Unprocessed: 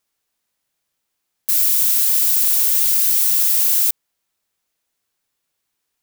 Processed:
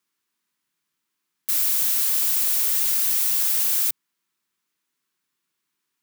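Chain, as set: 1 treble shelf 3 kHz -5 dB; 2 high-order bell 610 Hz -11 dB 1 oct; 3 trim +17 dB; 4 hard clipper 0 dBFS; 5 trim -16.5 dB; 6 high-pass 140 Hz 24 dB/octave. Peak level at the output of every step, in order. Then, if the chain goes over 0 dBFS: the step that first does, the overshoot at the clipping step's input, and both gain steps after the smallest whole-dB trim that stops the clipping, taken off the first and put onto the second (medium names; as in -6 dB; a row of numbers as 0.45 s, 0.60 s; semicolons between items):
-7.5 dBFS, -7.5 dBFS, +9.5 dBFS, 0.0 dBFS, -16.5 dBFS, -15.5 dBFS; step 3, 9.5 dB; step 3 +7 dB, step 5 -6.5 dB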